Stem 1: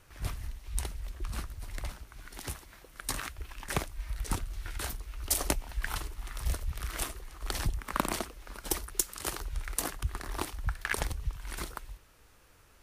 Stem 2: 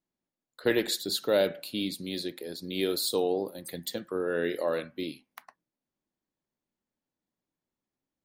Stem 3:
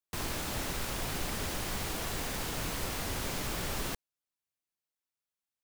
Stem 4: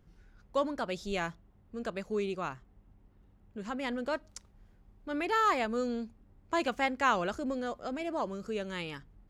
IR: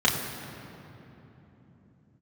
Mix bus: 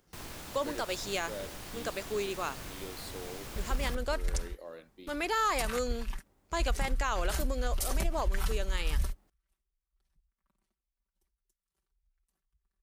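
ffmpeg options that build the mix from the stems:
-filter_complex "[0:a]aecho=1:1:5.2:0.92,asubboost=boost=2.5:cutoff=240,adelay=2500,volume=0.708[s0];[1:a]volume=0.141[s1];[2:a]volume=0.376[s2];[3:a]bass=f=250:g=-14,treble=f=4000:g=10,volume=1.19,asplit=2[s3][s4];[s4]apad=whole_len=676164[s5];[s0][s5]sidechaingate=range=0.00282:threshold=0.00141:ratio=16:detection=peak[s6];[s6][s1][s2][s3]amix=inputs=4:normalize=0,alimiter=limit=0.0944:level=0:latency=1:release=69"

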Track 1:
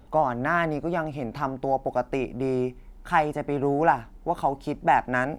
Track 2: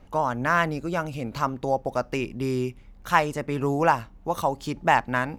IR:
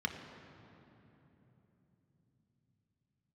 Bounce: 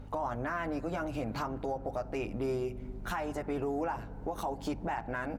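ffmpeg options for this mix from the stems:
-filter_complex "[0:a]highshelf=f=8300:g=-9.5,acompressor=threshold=0.0251:ratio=3,aeval=exprs='val(0)+0.00631*(sin(2*PI*50*n/s)+sin(2*PI*2*50*n/s)/2+sin(2*PI*3*50*n/s)/3+sin(2*PI*4*50*n/s)/4+sin(2*PI*5*50*n/s)/5)':c=same,volume=1,asplit=2[s0][s1];[s1]volume=0.158[s2];[1:a]acompressor=threshold=0.0501:ratio=6,adelay=9.6,volume=0.473[s3];[2:a]atrim=start_sample=2205[s4];[s2][s4]afir=irnorm=-1:irlink=0[s5];[s0][s3][s5]amix=inputs=3:normalize=0,alimiter=level_in=1.12:limit=0.0631:level=0:latency=1:release=73,volume=0.891"

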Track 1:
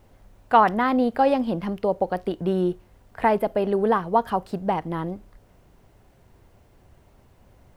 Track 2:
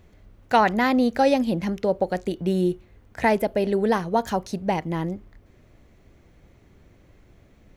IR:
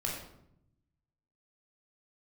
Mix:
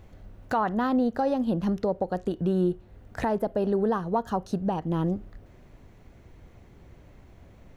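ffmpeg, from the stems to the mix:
-filter_complex "[0:a]bass=f=250:g=4,treble=f=4000:g=-14,volume=0.447,asplit=2[s0][s1];[1:a]volume=0.531[s2];[s1]apad=whole_len=342488[s3];[s2][s3]sidechaincompress=threshold=0.02:ratio=8:attack=29:release=406[s4];[s0][s4]amix=inputs=2:normalize=0,acontrast=25,alimiter=limit=0.158:level=0:latency=1:release=423"

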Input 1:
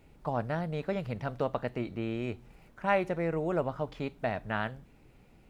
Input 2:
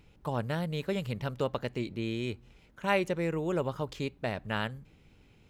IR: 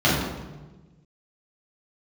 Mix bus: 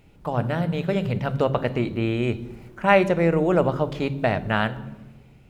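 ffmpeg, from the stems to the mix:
-filter_complex "[0:a]dynaudnorm=f=520:g=5:m=2,volume=1.26[s0];[1:a]volume=0.841,asplit=2[s1][s2];[s2]volume=0.075[s3];[2:a]atrim=start_sample=2205[s4];[s3][s4]afir=irnorm=-1:irlink=0[s5];[s0][s1][s5]amix=inputs=3:normalize=0"

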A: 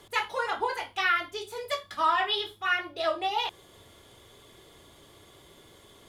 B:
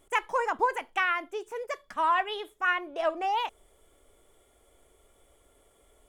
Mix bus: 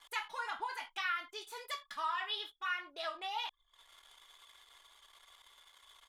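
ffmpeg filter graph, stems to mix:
-filter_complex "[0:a]highpass=f=880:w=0.5412,highpass=f=880:w=1.3066,acompressor=threshold=0.00282:ratio=1.5,volume=0.944[s0];[1:a]acompressor=threshold=0.0316:ratio=6,adelay=2,volume=0.168[s1];[s0][s1]amix=inputs=2:normalize=0,anlmdn=0.000158"

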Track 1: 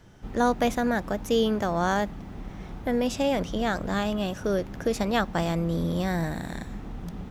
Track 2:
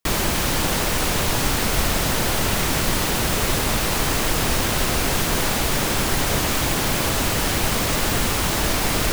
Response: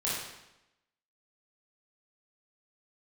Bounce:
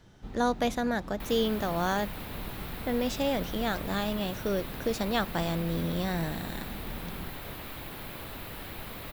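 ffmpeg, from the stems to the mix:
-filter_complex "[0:a]volume=0.631[s0];[1:a]firequalizer=gain_entry='entry(2400,0);entry(6200,-16);entry(13000,3)':delay=0.05:min_phase=1,adelay=1150,volume=0.106[s1];[s0][s1]amix=inputs=2:normalize=0,equalizer=f=3900:t=o:w=0.46:g=6"

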